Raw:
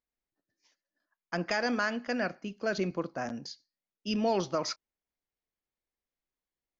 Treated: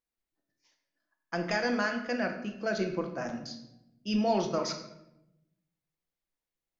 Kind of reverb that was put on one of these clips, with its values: simulated room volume 280 m³, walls mixed, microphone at 0.75 m; trim -1.5 dB

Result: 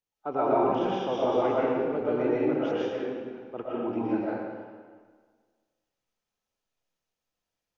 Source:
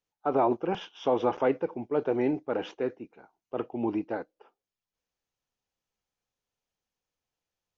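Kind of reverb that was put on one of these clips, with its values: algorithmic reverb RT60 1.6 s, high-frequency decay 0.85×, pre-delay 80 ms, DRR -7 dB; trim -5.5 dB

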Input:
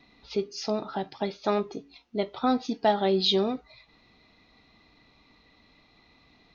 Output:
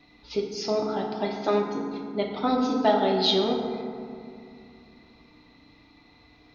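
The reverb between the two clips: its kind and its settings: FDN reverb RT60 2.4 s, low-frequency decay 1.45×, high-frequency decay 0.4×, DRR 0 dB

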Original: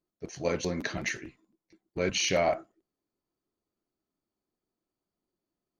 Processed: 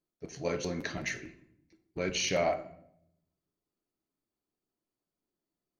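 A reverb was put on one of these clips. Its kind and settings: simulated room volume 160 m³, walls mixed, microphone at 0.32 m; trim -3.5 dB

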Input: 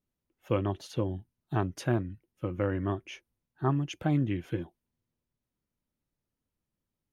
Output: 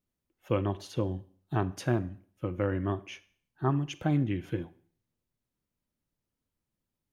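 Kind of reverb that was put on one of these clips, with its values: Schroeder reverb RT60 0.51 s, combs from 32 ms, DRR 16.5 dB

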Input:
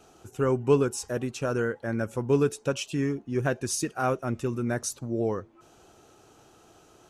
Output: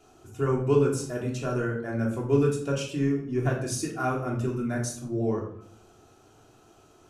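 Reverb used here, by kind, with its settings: simulated room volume 940 m³, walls furnished, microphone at 3.2 m; trim -5.5 dB

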